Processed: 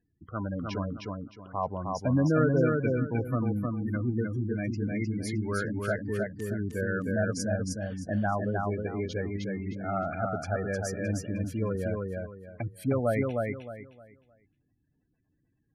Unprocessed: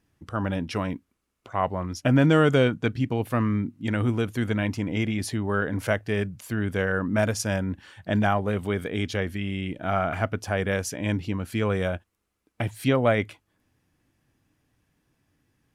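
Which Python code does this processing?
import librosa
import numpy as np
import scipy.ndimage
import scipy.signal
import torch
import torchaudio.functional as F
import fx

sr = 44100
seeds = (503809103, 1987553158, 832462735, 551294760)

y = fx.spec_gate(x, sr, threshold_db=-15, keep='strong')
y = fx.echo_feedback(y, sr, ms=309, feedback_pct=27, wet_db=-3.0)
y = y * 10.0 ** (-5.5 / 20.0)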